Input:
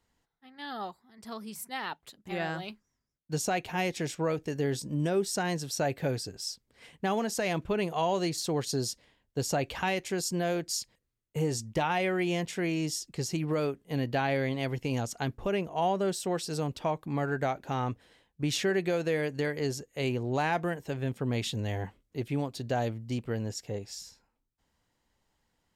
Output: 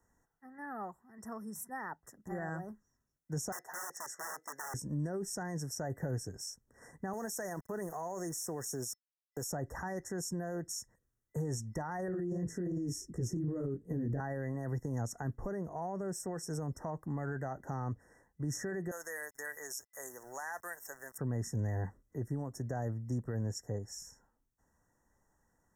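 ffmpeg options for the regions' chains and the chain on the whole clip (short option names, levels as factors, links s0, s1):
-filter_complex "[0:a]asettb=1/sr,asplit=3[s0][s1][s2];[s0]atrim=end=3.524[s3];[s1]atrim=start=3.52:end=4.74,asetpts=PTS-STARTPTS,afade=t=in:d=0.004:c=qsin,afade=t=out:st=1.216:d=0.004:c=qsin,aeval=exprs='(mod(23.7*val(0)+1,2)-1)/23.7':c=same,deesser=0.35,highpass=690[s4];[s2]atrim=start=4.736[s5];[s3][s4]acrossfade=d=0.004:c1=hsin:c2=qsin[s6];[s6][s5]acrossfade=d=0.004:c1=qsin:c2=hsin,asettb=1/sr,asplit=3[s7][s8][s9];[s7]atrim=end=7.134[s10];[s8]atrim=start=7.13:end=9.52,asetpts=PTS-STARTPTS,afade=t=in:d=0.004:c=qsin,afade=t=out:st=2.386:d=0.004:c=qsin,highpass=f=320:p=1,aemphasis=mode=production:type=50kf,aeval=exprs='val(0)*gte(abs(val(0)),0.00562)':c=same[s11];[s9]atrim=start=9.516[s12];[s10][s11]acrossfade=d=0.004:c1=hsin:c2=qsin[s13];[s13][s12]acrossfade=d=0.004:c1=qsin:c2=hsin,asettb=1/sr,asplit=3[s14][s15][s16];[s14]atrim=end=12.084[s17];[s15]atrim=start=12.08:end=14.2,asetpts=PTS-STARTPTS,afade=t=in:d=0.004:c=qsin,afade=t=out:st=2.116:d=0.004:c=qsin,lowshelf=f=550:t=q:w=1.5:g=10.5,flanger=delay=16:depth=6.8:speed=2.7[s18];[s16]atrim=start=14.196[s19];[s17][s18]acrossfade=d=0.004:c1=hsin:c2=qsin[s20];[s20][s19]acrossfade=d=0.004:c1=qsin:c2=hsin,asettb=1/sr,asplit=3[s21][s22][s23];[s21]atrim=end=18.914[s24];[s22]atrim=start=18.91:end=21.18,asetpts=PTS-STARTPTS,afade=t=in:d=0.004:c=qsin,afade=t=out:st=2.266:d=0.004:c=qsin,highpass=980,aemphasis=mode=production:type=75fm,aeval=exprs='val(0)*gte(abs(val(0)),0.00251)':c=same[s25];[s23]atrim=start=21.176[s26];[s24][s25]acrossfade=d=0.004:c1=hsin:c2=qsin[s27];[s27][s26]acrossfade=d=0.004:c1=qsin:c2=hsin,afftfilt=real='re*(1-between(b*sr/4096,2000,5300))':imag='im*(1-between(b*sr/4096,2000,5300))':win_size=4096:overlap=0.75,alimiter=level_in=1.26:limit=0.0631:level=0:latency=1:release=20,volume=0.794,acrossover=split=150[s28][s29];[s29]acompressor=threshold=0.00282:ratio=1.5[s30];[s28][s30]amix=inputs=2:normalize=0,volume=1.19"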